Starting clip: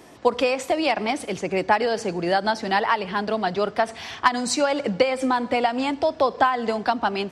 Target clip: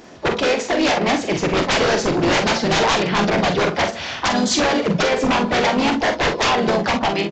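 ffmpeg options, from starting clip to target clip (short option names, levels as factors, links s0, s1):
-filter_complex "[0:a]dynaudnorm=f=420:g=5:m=3.76,asplit=4[s0][s1][s2][s3];[s1]asetrate=33038,aresample=44100,atempo=1.33484,volume=0.282[s4];[s2]asetrate=37084,aresample=44100,atempo=1.18921,volume=0.562[s5];[s3]asetrate=52444,aresample=44100,atempo=0.840896,volume=0.178[s6];[s0][s4][s5][s6]amix=inputs=4:normalize=0,aeval=exprs='0.168*(abs(mod(val(0)/0.168+3,4)-2)-1)':c=same,aresample=16000,aresample=44100,aecho=1:1:44|62:0.473|0.168,volume=1.41"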